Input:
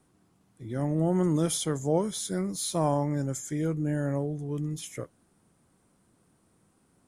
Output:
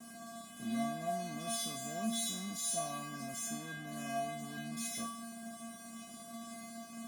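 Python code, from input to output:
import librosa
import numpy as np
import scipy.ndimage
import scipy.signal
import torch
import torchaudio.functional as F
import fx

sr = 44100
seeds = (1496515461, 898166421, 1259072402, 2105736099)

p1 = fx.bin_compress(x, sr, power=0.6)
p2 = fx.steep_lowpass(p1, sr, hz=2300.0, slope=36, at=(3.46, 3.87))
p3 = fx.fuzz(p2, sr, gain_db=46.0, gate_db=-46.0)
p4 = p2 + F.gain(torch.from_numpy(p3), -9.5).numpy()
p5 = fx.vibrato(p4, sr, rate_hz=2.1, depth_cents=18.0)
p6 = fx.comb_fb(p5, sr, f0_hz=230.0, decay_s=0.67, harmonics='odd', damping=0.0, mix_pct=100)
y = F.gain(torch.from_numpy(p6), 4.0).numpy()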